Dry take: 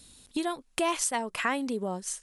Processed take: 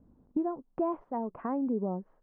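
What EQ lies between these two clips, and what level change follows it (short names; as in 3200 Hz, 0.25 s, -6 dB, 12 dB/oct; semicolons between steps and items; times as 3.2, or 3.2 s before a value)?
LPF 1000 Hz 24 dB/oct; bell 220 Hz +6.5 dB 2 oct; -4.0 dB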